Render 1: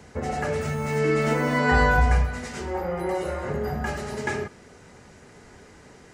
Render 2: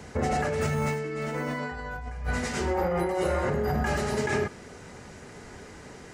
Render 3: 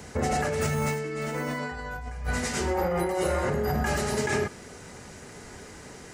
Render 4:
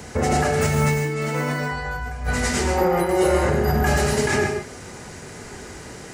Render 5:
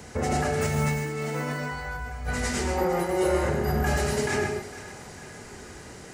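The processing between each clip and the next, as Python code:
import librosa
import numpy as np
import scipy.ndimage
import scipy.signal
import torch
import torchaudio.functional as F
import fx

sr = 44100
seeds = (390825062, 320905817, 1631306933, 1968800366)

y1 = fx.over_compress(x, sr, threshold_db=-29.0, ratio=-1.0)
y2 = fx.high_shelf(y1, sr, hz=5900.0, db=9.0)
y3 = fx.rev_gated(y2, sr, seeds[0], gate_ms=170, shape='rising', drr_db=5.0)
y3 = y3 * librosa.db_to_amplitude(5.5)
y4 = fx.echo_split(y3, sr, split_hz=640.0, low_ms=127, high_ms=454, feedback_pct=52, wet_db=-15)
y4 = y4 * librosa.db_to_amplitude(-6.0)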